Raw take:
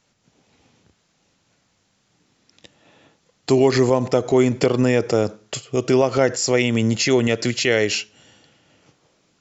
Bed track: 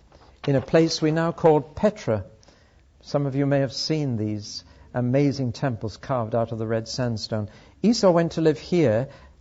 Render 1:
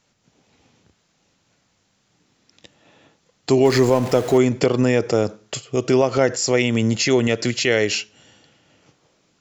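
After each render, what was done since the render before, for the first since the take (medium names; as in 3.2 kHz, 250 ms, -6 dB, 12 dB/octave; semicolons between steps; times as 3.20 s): 3.65–4.38 s: jump at every zero crossing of -27.5 dBFS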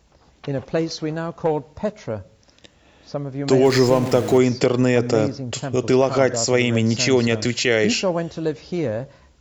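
add bed track -4 dB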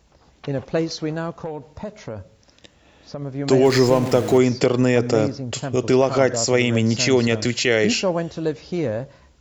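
1.36–3.22 s: compression, threshold -26 dBFS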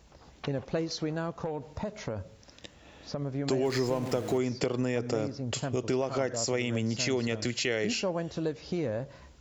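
compression 2.5:1, threshold -32 dBFS, peak gain reduction 14 dB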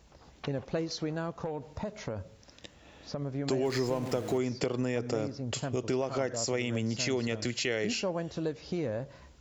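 trim -1.5 dB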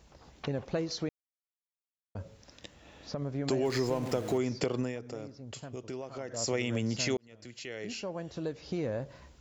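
1.09–2.15 s: mute; 4.78–6.45 s: dip -9.5 dB, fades 0.20 s; 7.17–8.92 s: fade in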